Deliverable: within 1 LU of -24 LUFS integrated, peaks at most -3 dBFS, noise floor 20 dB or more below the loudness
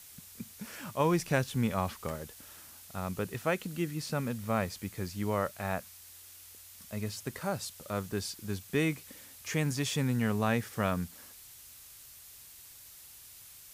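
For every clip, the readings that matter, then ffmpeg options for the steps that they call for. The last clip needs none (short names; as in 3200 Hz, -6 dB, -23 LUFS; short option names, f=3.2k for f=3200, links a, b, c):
noise floor -52 dBFS; noise floor target -54 dBFS; loudness -33.5 LUFS; peak -14.5 dBFS; loudness target -24.0 LUFS
-> -af "afftdn=nr=6:nf=-52"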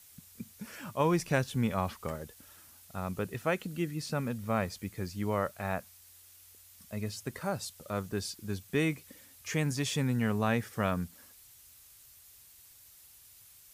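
noise floor -57 dBFS; loudness -33.5 LUFS; peak -15.0 dBFS; loudness target -24.0 LUFS
-> -af "volume=9.5dB"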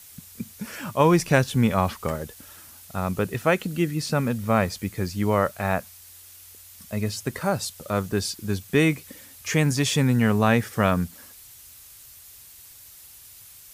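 loudness -24.0 LUFS; peak -5.5 dBFS; noise floor -48 dBFS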